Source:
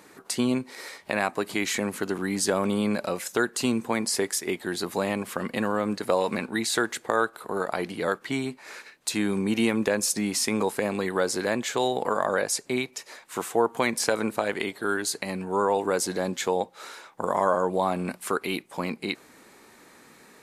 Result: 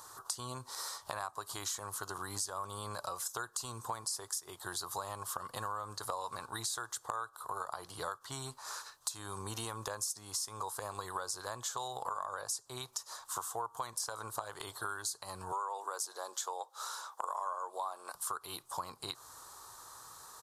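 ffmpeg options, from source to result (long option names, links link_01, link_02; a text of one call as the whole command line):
ffmpeg -i in.wav -filter_complex "[0:a]asettb=1/sr,asplit=3[link_01][link_02][link_03];[link_01]atrim=end=15.524[link_04];[link_02]atrim=start=15.52:end=18.15,asetpts=PTS-STARTPTS,afade=type=in:duration=0.004:curve=qsin,afade=type=out:start_time=2.626:duration=0.004:curve=qsin,highpass=frequency=350:width=0.5412,highpass=frequency=350:width=1.3066[link_05];[link_03]atrim=start=18.146[link_06];[link_04][link_05]acrossfade=duration=0.004:curve1=hsin:curve2=qsin[link_07];[link_07][link_06]acrossfade=duration=0.004:curve1=qsin:curve2=hsin,firequalizer=gain_entry='entry(110,0);entry(200,-25);entry(370,-15);entry(1100,6);entry(2200,-22);entry(3300,-4);entry(5600,4)':delay=0.05:min_phase=1,acompressor=threshold=-39dB:ratio=5,volume=2dB" out.wav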